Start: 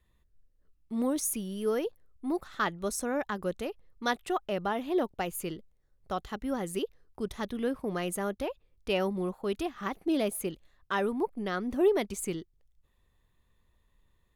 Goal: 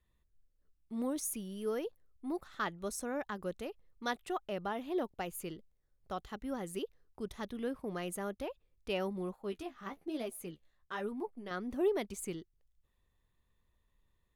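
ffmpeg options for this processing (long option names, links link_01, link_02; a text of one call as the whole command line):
ffmpeg -i in.wav -filter_complex "[0:a]asettb=1/sr,asplit=3[link_01][link_02][link_03];[link_01]atrim=end=9.364[link_04];[link_02]atrim=start=9.36:end=11.51,asetpts=PTS-STARTPTS,afade=type=in:duration=0.004:curve=qsin,afade=type=out:start_time=2.146:duration=0.004:curve=qsin,flanger=delay=7.4:depth=9.7:regen=28:speed=1.1:shape=triangular[link_05];[link_03]atrim=start=11.506[link_06];[link_04][link_05]acrossfade=duration=0.004:curve1=hsin:curve2=qsin[link_07];[link_07][link_06]acrossfade=duration=0.004:curve1=qsin:curve2=hsin,volume=-6.5dB" out.wav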